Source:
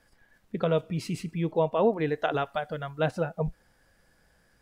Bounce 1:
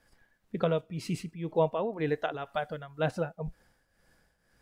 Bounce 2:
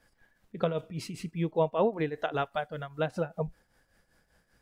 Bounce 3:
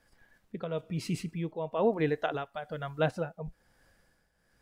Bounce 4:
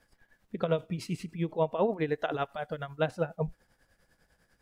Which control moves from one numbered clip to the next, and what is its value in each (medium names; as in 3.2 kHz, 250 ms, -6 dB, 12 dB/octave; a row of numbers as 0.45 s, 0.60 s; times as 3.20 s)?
tremolo, rate: 2 Hz, 5.1 Hz, 1.1 Hz, 10 Hz